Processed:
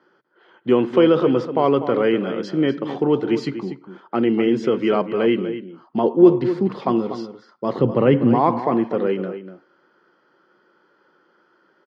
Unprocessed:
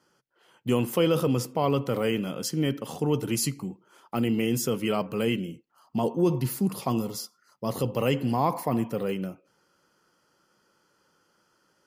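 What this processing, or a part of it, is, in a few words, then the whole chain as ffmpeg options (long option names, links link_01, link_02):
kitchen radio: -filter_complex "[0:a]asettb=1/sr,asplit=3[link_01][link_02][link_03];[link_01]atrim=end=7.794[link_04];[link_02]atrim=start=7.79:end=8.35,asetpts=PTS-STARTPTS,afade=type=in:duration=0.004:curve=qsin,afade=type=out:start_time=0.556:duration=0.004:curve=qsin,bass=frequency=250:gain=11,treble=frequency=4000:gain=-13[link_05];[link_03]atrim=start=8.346[link_06];[link_04][link_05]acrossfade=duration=0.004:curve1=hsin:curve2=qsin[link_07];[link_07][link_06]acrossfade=duration=0.004:curve1=qsin:curve2=hsin,highpass=220,equalizer=frequency=360:width_type=q:width=4:gain=7,equalizer=frequency=1600:width_type=q:width=4:gain=4,equalizer=frequency=2700:width_type=q:width=4:gain=-8,lowpass=frequency=3500:width=0.5412,lowpass=frequency=3500:width=1.3066,asplit=2[link_08][link_09];[link_09]adelay=244.9,volume=-11dB,highshelf=frequency=4000:gain=-5.51[link_10];[link_08][link_10]amix=inputs=2:normalize=0,volume=7dB"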